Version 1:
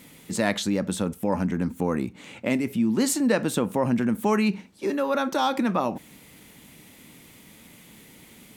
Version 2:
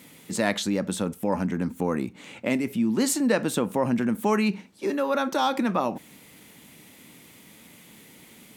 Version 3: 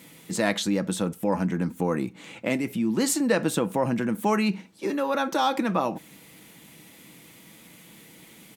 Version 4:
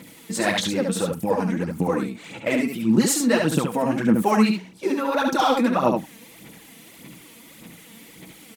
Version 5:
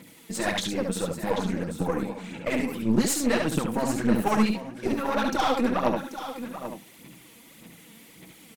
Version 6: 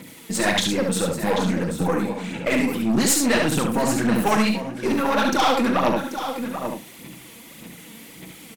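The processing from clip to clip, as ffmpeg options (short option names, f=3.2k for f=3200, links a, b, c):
-af "highpass=f=120:p=1"
-af "aecho=1:1:6.1:0.32"
-af "aphaser=in_gain=1:out_gain=1:delay=4.5:decay=0.68:speed=1.7:type=sinusoidal,aecho=1:1:71:0.596"
-af "aecho=1:1:786:0.282,aeval=exprs='0.531*(cos(1*acos(clip(val(0)/0.531,-1,1)))-cos(1*PI/2))+0.0531*(cos(6*acos(clip(val(0)/0.531,-1,1)))-cos(6*PI/2))':c=same,volume=-5dB"
-filter_complex "[0:a]acrossover=split=1200[a][b];[a]asoftclip=type=tanh:threshold=-23dB[c];[c][b]amix=inputs=2:normalize=0,asplit=2[d][e];[e]adelay=39,volume=-11.5dB[f];[d][f]amix=inputs=2:normalize=0,volume=7.5dB"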